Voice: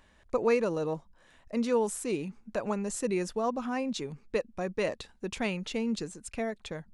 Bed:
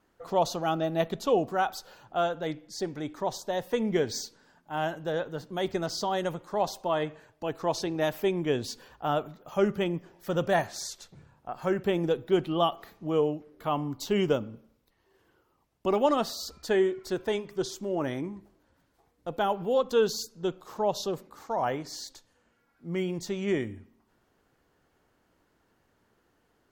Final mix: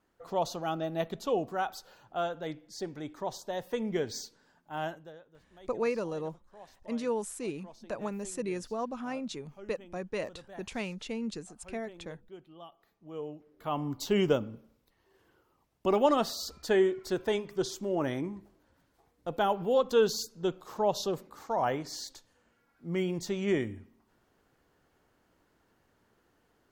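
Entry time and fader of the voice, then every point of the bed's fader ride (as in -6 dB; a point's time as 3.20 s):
5.35 s, -4.5 dB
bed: 4.89 s -5 dB
5.21 s -24 dB
12.68 s -24 dB
13.91 s -0.5 dB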